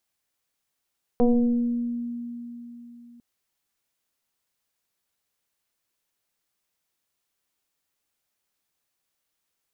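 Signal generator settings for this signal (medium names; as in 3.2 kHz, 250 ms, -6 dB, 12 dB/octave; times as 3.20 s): FM tone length 2.00 s, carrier 238 Hz, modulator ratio 1.03, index 1.5, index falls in 1.38 s exponential, decay 3.71 s, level -14.5 dB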